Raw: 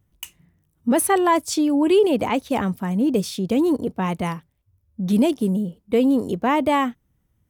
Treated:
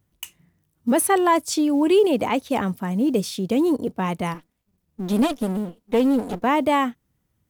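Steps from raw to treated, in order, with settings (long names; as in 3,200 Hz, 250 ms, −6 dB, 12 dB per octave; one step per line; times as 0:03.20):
0:04.34–0:06.44: lower of the sound and its delayed copy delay 4.1 ms
low-shelf EQ 87 Hz −9 dB
log-companded quantiser 8 bits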